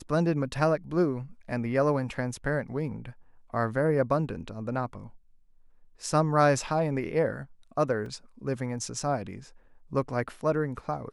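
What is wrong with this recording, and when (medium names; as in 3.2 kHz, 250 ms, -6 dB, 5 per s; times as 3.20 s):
8.06 s: dropout 3.2 ms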